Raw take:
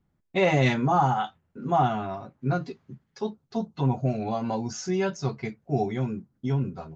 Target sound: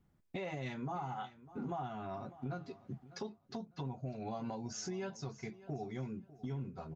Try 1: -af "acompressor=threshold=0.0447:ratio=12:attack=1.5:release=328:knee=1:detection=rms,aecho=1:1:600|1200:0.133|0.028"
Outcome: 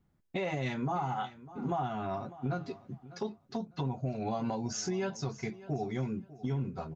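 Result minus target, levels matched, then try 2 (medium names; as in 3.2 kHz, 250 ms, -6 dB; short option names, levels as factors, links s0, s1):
compression: peak gain reduction -7.5 dB
-af "acompressor=threshold=0.0178:ratio=12:attack=1.5:release=328:knee=1:detection=rms,aecho=1:1:600|1200:0.133|0.028"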